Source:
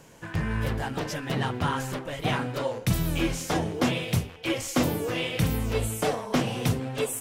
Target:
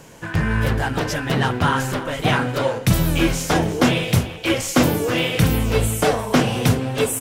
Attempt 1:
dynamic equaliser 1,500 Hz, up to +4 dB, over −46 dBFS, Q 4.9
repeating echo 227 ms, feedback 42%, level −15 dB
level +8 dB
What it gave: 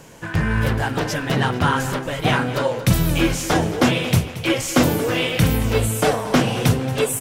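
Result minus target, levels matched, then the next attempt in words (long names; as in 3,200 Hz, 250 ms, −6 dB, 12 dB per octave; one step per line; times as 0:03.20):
echo 118 ms early
dynamic equaliser 1,500 Hz, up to +4 dB, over −46 dBFS, Q 4.9
repeating echo 345 ms, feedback 42%, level −15 dB
level +8 dB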